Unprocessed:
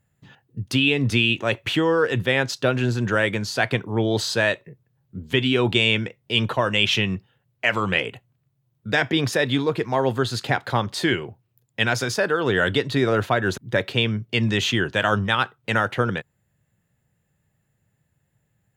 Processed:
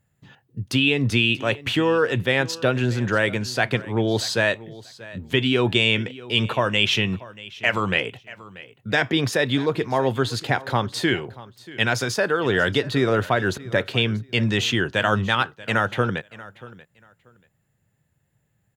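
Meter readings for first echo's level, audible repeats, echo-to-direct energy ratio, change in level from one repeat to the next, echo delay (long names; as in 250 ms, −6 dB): −19.0 dB, 2, −19.0 dB, −14.0 dB, 635 ms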